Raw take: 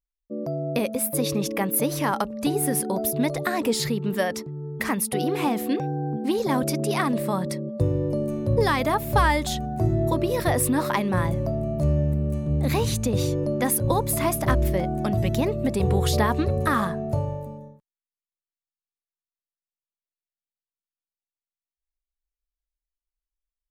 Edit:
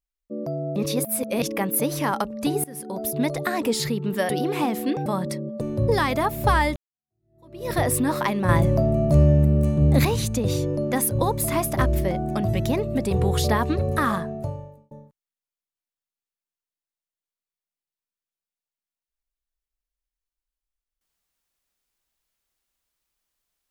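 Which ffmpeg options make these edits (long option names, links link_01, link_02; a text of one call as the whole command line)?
ffmpeg -i in.wav -filter_complex "[0:a]asplit=11[link_01][link_02][link_03][link_04][link_05][link_06][link_07][link_08][link_09][link_10][link_11];[link_01]atrim=end=0.762[link_12];[link_02]atrim=start=0.758:end=1.422,asetpts=PTS-STARTPTS,areverse[link_13];[link_03]atrim=start=1.418:end=2.64,asetpts=PTS-STARTPTS,afade=type=out:start_time=1.218:duration=0.004:curve=hsin:silence=0.0707946[link_14];[link_04]atrim=start=2.64:end=4.292,asetpts=PTS-STARTPTS,afade=type=in:duration=0.58:silence=0.0707946[link_15];[link_05]atrim=start=5.118:end=5.892[link_16];[link_06]atrim=start=7.258:end=7.812[link_17];[link_07]atrim=start=8.298:end=9.45,asetpts=PTS-STARTPTS,afade=type=out:start_time=1.148:duration=0.004:curve=hsin[link_18];[link_08]atrim=start=9.45:end=11.182,asetpts=PTS-STARTPTS,afade=type=in:duration=0.95:curve=exp[link_19];[link_09]atrim=start=11.178:end=12.742,asetpts=PTS-STARTPTS,volume=6dB[link_20];[link_10]atrim=start=12.738:end=17.6,asetpts=PTS-STARTPTS,afade=type=out:start_time=4.102:duration=0.76[link_21];[link_11]atrim=start=17.6,asetpts=PTS-STARTPTS,afade=type=in:duration=0.004:curve=hsin[link_22];[link_12][link_13]acrossfade=duration=0.004:curve1=hsin:curve2=hsin[link_23];[link_14][link_15]concat=n=2:v=0:a=1[link_24];[link_23][link_24]acrossfade=duration=0.004:curve1=hsin:curve2=hsin[link_25];[link_25][link_16]acrossfade=duration=0.004:curve1=hsin:curve2=hsin[link_26];[link_26][link_17]acrossfade=duration=0.004:curve1=hsin:curve2=hsin[link_27];[link_18][link_19]concat=n=2:v=0:a=1[link_28];[link_27][link_28]acrossfade=duration=0.004:curve1=hsin:curve2=hsin[link_29];[link_29][link_20]acrossfade=duration=0.004:curve1=hsin:curve2=hsin[link_30];[link_21][link_22]concat=n=2:v=0:a=1[link_31];[link_30][link_31]acrossfade=duration=0.004:curve1=hsin:curve2=hsin" out.wav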